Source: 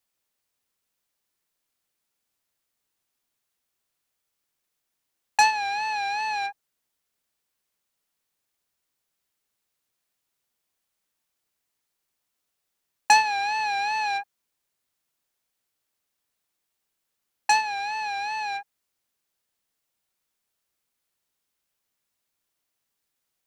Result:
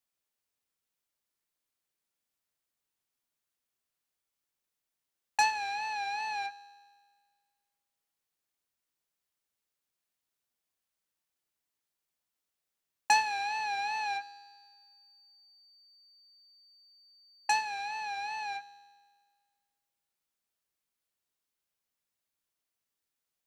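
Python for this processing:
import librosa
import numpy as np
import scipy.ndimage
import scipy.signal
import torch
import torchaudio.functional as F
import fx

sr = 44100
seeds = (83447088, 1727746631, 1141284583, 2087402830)

y = fx.comb_fb(x, sr, f0_hz=81.0, decay_s=1.7, harmonics='all', damping=0.0, mix_pct=60)
y = fx.dmg_tone(y, sr, hz=4600.0, level_db=-59.0, at=(14.2, 17.63), fade=0.02)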